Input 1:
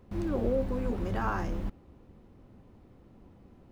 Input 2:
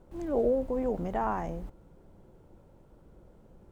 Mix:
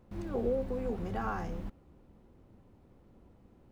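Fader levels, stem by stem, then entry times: −5.5, −10.0 decibels; 0.00, 0.00 seconds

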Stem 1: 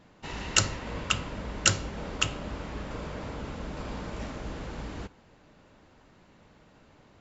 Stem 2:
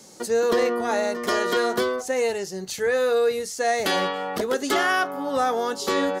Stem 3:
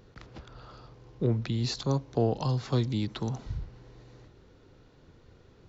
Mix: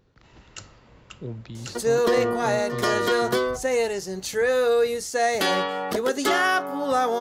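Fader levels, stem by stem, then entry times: −17.5, +0.5, −8.0 decibels; 0.00, 1.55, 0.00 seconds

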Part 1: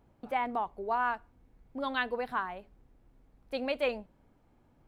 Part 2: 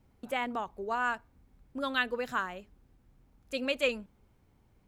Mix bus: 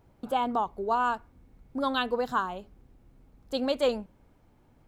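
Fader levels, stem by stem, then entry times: +2.5, −1.0 decibels; 0.00, 0.00 seconds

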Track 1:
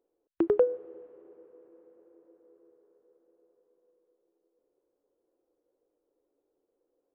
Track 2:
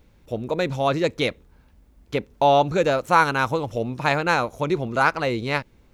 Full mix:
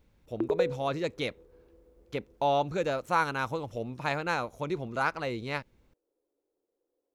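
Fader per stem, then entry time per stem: −4.0, −9.5 decibels; 0.00, 0.00 seconds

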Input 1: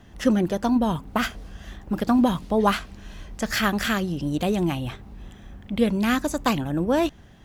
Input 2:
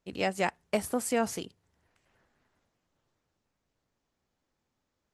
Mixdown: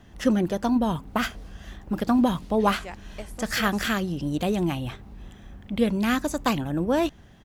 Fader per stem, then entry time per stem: −1.5, −10.5 decibels; 0.00, 2.45 seconds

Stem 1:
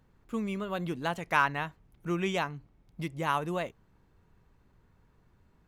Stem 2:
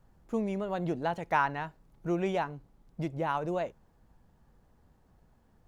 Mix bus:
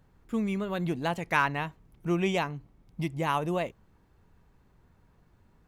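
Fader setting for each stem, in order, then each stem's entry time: +1.0, −5.5 decibels; 0.00, 0.00 seconds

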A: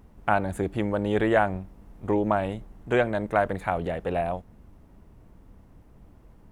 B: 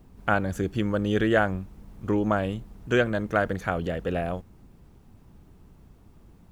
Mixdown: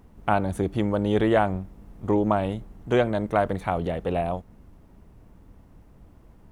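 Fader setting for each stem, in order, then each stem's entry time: +0.5, −9.5 decibels; 0.00, 0.00 seconds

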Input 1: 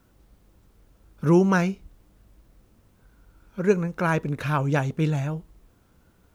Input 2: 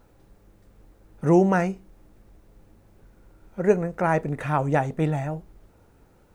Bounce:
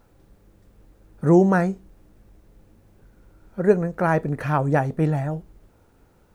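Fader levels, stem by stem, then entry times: −6.5, −1.0 decibels; 0.00, 0.00 seconds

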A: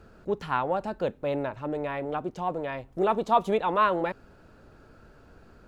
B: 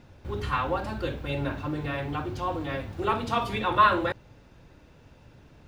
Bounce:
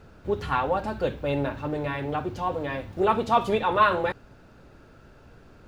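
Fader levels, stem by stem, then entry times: +0.5, −3.0 decibels; 0.00, 0.00 seconds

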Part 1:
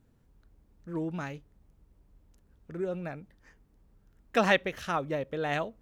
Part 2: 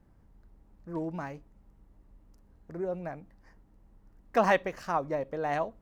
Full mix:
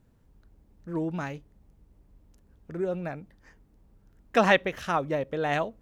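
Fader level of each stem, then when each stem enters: +1.0, −8.0 decibels; 0.00, 0.00 seconds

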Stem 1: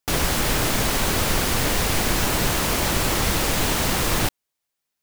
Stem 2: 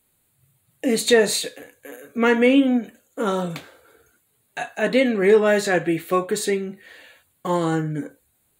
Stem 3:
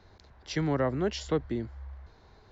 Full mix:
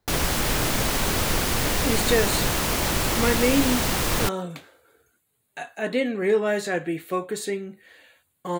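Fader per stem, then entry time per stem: −2.0, −6.0, −15.0 decibels; 0.00, 1.00, 0.00 seconds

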